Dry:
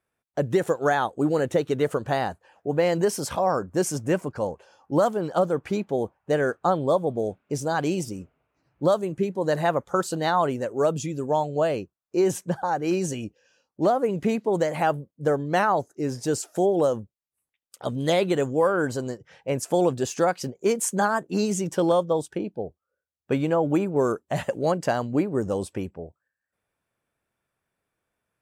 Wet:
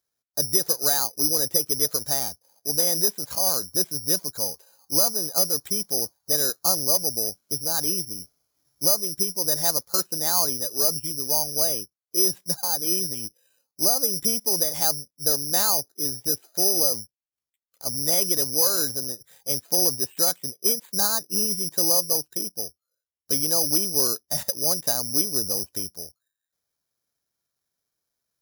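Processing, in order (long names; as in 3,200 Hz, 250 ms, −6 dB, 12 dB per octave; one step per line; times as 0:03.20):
0:02.19–0:02.87: running median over 25 samples
bad sample-rate conversion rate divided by 8×, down filtered, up zero stuff
level −9 dB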